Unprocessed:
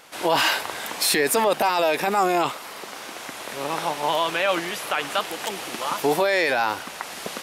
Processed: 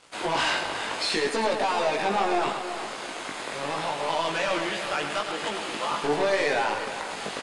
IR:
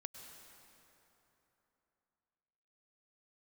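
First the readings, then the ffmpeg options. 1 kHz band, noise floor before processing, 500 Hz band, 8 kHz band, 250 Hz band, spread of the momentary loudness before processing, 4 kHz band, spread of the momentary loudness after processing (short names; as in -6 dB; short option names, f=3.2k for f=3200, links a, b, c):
-3.5 dB, -38 dBFS, -3.5 dB, -8.0 dB, -3.0 dB, 14 LU, -3.5 dB, 8 LU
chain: -filter_complex "[0:a]acrossover=split=5900[a][b];[b]acompressor=threshold=-44dB:ratio=4:attack=1:release=60[c];[a][c]amix=inputs=2:normalize=0,bandreject=f=5.7k:w=9.9,asplit=2[d][e];[e]acompressor=threshold=-32dB:ratio=6,volume=-1.5dB[f];[d][f]amix=inputs=2:normalize=0,asoftclip=type=hard:threshold=-18.5dB,flanger=delay=18.5:depth=2.1:speed=0.72,aeval=exprs='sgn(val(0))*max(abs(val(0))-0.00422,0)':c=same,asplit=2[g][h];[h]adelay=367.3,volume=-11dB,highshelf=f=4k:g=-8.27[i];[g][i]amix=inputs=2:normalize=0,asplit=2[j][k];[1:a]atrim=start_sample=2205,adelay=107[l];[k][l]afir=irnorm=-1:irlink=0,volume=-3dB[m];[j][m]amix=inputs=2:normalize=0,aresample=22050,aresample=44100"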